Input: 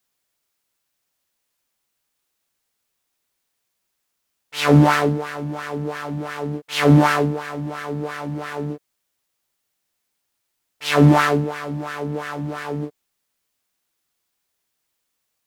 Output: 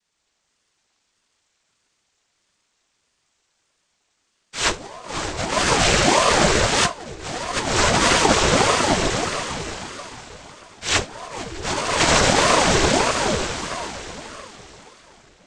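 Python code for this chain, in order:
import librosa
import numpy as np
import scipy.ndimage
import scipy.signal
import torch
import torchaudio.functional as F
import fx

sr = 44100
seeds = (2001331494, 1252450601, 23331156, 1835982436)

p1 = fx.envelope_flatten(x, sr, power=0.3)
p2 = fx.wow_flutter(p1, sr, seeds[0], rate_hz=2.1, depth_cents=19.0)
p3 = p2 + fx.echo_feedback(p2, sr, ms=454, feedback_pct=36, wet_db=-7, dry=0)
p4 = fx.rev_plate(p3, sr, seeds[1], rt60_s=3.8, hf_ratio=1.0, predelay_ms=0, drr_db=-7.5)
p5 = fx.dynamic_eq(p4, sr, hz=220.0, q=2.0, threshold_db=-22.0, ratio=4.0, max_db=4)
p6 = fx.cheby1_bandstop(p5, sr, low_hz=430.0, high_hz=1100.0, order=2, at=(5.8, 6.3))
p7 = fx.over_compress(p6, sr, threshold_db=-15.0, ratio=-0.5)
p8 = fx.noise_vocoder(p7, sr, seeds[2], bands=12)
y = fx.ring_lfo(p8, sr, carrier_hz=530.0, swing_pct=65, hz=1.6)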